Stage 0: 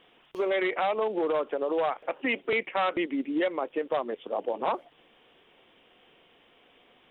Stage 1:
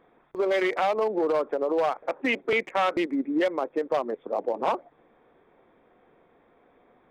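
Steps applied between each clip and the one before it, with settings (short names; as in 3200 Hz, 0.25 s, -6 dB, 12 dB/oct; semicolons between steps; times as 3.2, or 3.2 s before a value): Wiener smoothing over 15 samples; gain +3 dB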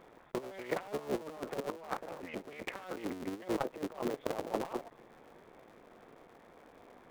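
cycle switcher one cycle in 3, muted; negative-ratio compressor -34 dBFS, ratio -0.5; gain -3 dB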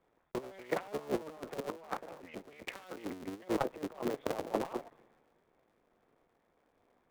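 three-band expander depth 70%; gain -1 dB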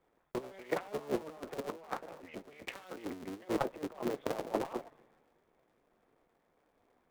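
flange 1.3 Hz, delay 2.1 ms, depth 6.1 ms, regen -68%; gain +4 dB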